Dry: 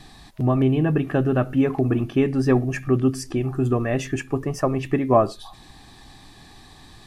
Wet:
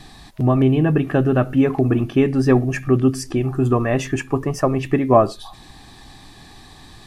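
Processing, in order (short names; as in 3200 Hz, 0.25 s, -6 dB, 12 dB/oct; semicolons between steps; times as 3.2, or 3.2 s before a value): 3.62–4.51 bell 1000 Hz +6 dB 0.52 oct; gain +3.5 dB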